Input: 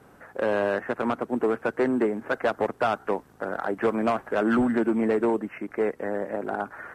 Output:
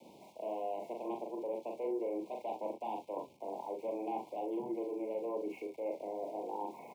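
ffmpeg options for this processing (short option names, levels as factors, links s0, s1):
-filter_complex "[0:a]lowpass=2100,equalizer=f=74:t=o:w=1.5:g=4.5,areverse,acompressor=threshold=0.02:ratio=6,areverse,afreqshift=33,flanger=delay=4.6:depth=2:regen=-88:speed=0.32:shape=sinusoidal,aeval=exprs='val(0)*gte(abs(val(0)),0.001)':c=same,afreqshift=73,asuperstop=centerf=1500:order=20:qfactor=1.3,asplit=2[s0][s1];[s1]aecho=0:1:41|66:0.668|0.237[s2];[s0][s2]amix=inputs=2:normalize=0,volume=1.12"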